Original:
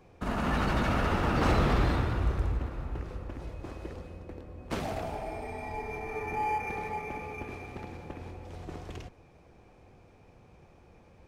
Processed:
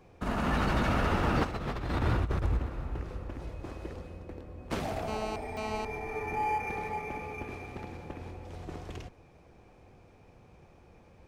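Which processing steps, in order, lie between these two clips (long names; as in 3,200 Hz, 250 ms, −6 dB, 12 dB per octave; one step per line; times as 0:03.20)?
0:01.43–0:02.57: compressor whose output falls as the input rises −29 dBFS, ratio −0.5
0:05.08–0:05.85: phone interference −37 dBFS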